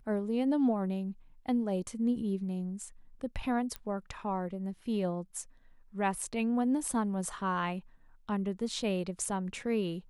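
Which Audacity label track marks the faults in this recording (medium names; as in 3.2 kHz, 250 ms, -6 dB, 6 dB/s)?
3.760000	3.760000	pop -24 dBFS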